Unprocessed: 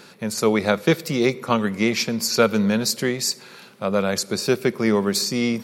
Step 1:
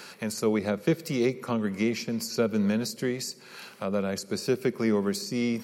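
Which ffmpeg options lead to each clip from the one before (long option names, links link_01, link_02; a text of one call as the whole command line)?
ffmpeg -i in.wav -filter_complex "[0:a]lowshelf=frequency=490:gain=-10,bandreject=frequency=3600:width=9.7,acrossover=split=440[link_01][link_02];[link_02]acompressor=threshold=-39dB:ratio=5[link_03];[link_01][link_03]amix=inputs=2:normalize=0,volume=3.5dB" out.wav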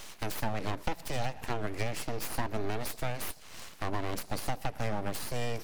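ffmpeg -i in.wav -af "lowshelf=frequency=110:width_type=q:width=3:gain=6.5,acompressor=threshold=-27dB:ratio=6,aeval=exprs='abs(val(0))':channel_layout=same,volume=1dB" out.wav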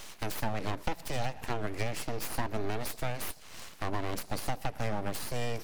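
ffmpeg -i in.wav -af anull out.wav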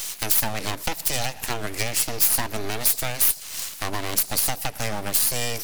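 ffmpeg -i in.wav -af "crystalizer=i=6:c=0,volume=3dB" out.wav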